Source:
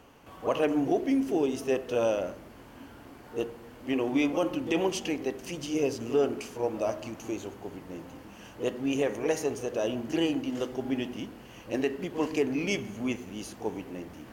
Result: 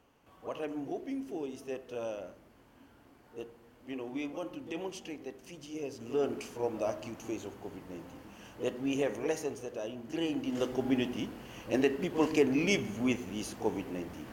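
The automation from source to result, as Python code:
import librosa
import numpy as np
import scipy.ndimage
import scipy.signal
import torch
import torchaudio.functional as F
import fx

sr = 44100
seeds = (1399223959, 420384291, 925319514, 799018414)

y = fx.gain(x, sr, db=fx.line((5.88, -11.5), (6.31, -3.5), (9.16, -3.5), (9.96, -10.5), (10.69, 1.0)))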